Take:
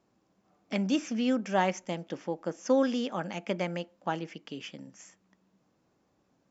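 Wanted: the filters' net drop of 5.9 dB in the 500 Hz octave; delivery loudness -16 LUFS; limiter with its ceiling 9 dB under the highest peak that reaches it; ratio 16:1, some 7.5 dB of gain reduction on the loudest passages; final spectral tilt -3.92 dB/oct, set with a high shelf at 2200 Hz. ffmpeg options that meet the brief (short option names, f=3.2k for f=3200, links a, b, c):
-af "equalizer=f=500:t=o:g=-7,highshelf=f=2.2k:g=5.5,acompressor=threshold=-30dB:ratio=16,volume=23dB,alimiter=limit=-4dB:level=0:latency=1"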